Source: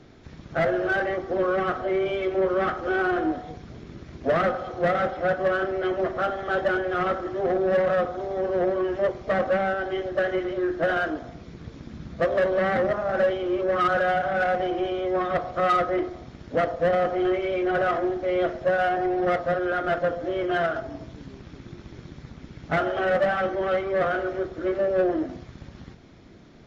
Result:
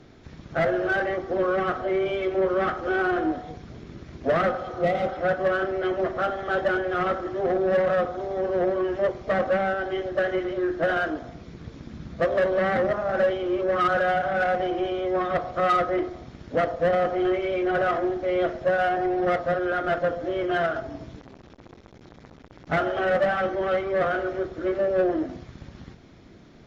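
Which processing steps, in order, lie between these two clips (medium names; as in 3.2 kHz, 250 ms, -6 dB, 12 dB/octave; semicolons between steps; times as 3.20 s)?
4.74–5.06 s: spectral replace 850–1900 Hz; 21.19–22.67 s: transformer saturation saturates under 980 Hz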